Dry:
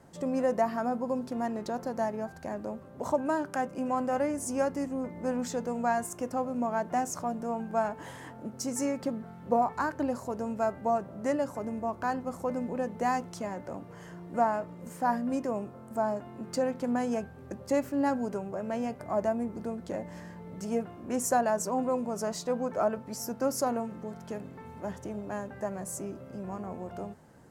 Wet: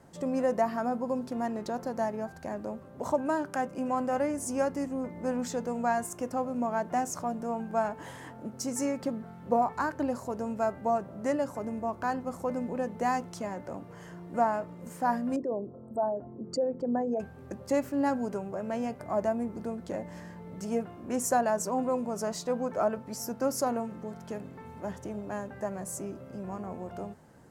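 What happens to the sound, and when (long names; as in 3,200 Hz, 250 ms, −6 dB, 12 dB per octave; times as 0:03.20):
0:15.36–0:17.20: spectral envelope exaggerated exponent 2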